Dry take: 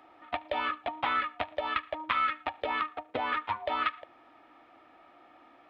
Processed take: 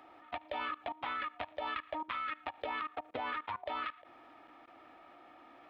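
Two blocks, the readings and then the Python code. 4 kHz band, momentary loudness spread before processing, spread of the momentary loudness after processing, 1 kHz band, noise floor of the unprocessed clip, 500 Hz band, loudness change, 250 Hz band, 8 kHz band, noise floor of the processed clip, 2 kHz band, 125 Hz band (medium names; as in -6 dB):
-7.5 dB, 6 LU, 19 LU, -7.5 dB, -59 dBFS, -7.0 dB, -7.5 dB, -5.5 dB, no reading, -59 dBFS, -7.5 dB, -7.5 dB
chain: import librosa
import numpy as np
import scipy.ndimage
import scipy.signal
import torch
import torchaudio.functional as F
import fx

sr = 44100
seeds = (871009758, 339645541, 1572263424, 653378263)

y = fx.level_steps(x, sr, step_db=20)
y = y * librosa.db_to_amplitude(2.5)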